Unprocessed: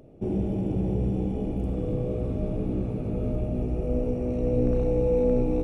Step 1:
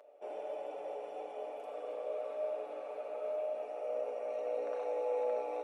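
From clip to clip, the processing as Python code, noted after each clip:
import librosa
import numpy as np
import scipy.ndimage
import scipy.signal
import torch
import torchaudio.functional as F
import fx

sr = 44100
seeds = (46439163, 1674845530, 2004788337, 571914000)

y = scipy.signal.sosfilt(scipy.signal.cheby1(4, 1.0, 560.0, 'highpass', fs=sr, output='sos'), x)
y = fx.high_shelf(y, sr, hz=2900.0, db=-9.5)
y = y + 0.58 * np.pad(y, (int(6.9 * sr / 1000.0), 0))[:len(y)]
y = y * 10.0 ** (1.0 / 20.0)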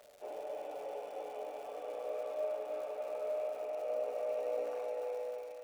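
y = fx.fade_out_tail(x, sr, length_s=1.07)
y = fx.echo_thinned(y, sr, ms=301, feedback_pct=71, hz=730.0, wet_db=-4)
y = fx.dmg_crackle(y, sr, seeds[0], per_s=350.0, level_db=-48.0)
y = y * 10.0 ** (-1.0 / 20.0)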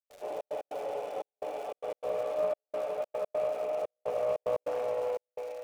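y = fx.step_gate(x, sr, bpm=148, pattern='.xxx.x.xxxxx.', floor_db=-60.0, edge_ms=4.5)
y = fx.doppler_dist(y, sr, depth_ms=0.13)
y = y * 10.0 ** (7.0 / 20.0)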